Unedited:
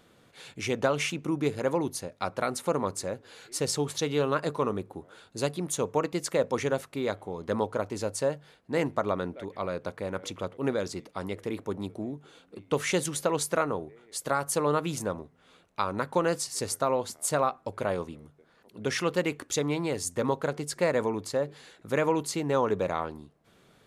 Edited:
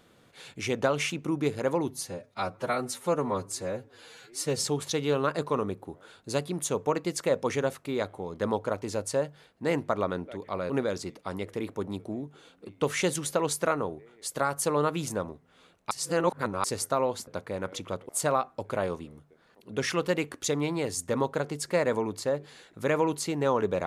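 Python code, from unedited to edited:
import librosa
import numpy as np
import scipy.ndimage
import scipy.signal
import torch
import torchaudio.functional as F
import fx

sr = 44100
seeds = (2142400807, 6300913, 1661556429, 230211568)

y = fx.edit(x, sr, fx.stretch_span(start_s=1.88, length_s=1.84, factor=1.5),
    fx.move(start_s=9.78, length_s=0.82, to_s=17.17),
    fx.reverse_span(start_s=15.81, length_s=0.73), tone=tone)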